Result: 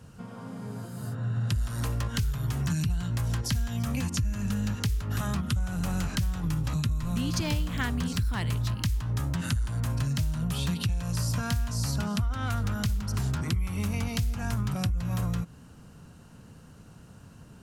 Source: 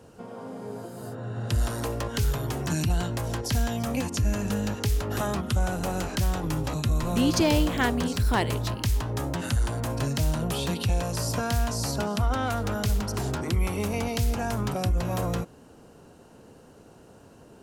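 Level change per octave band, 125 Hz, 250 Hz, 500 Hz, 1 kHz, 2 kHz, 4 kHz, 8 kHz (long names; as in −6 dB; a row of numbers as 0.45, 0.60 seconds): +0.5, −3.0, −12.5, −8.0, −4.0, −3.0, −3.5 decibels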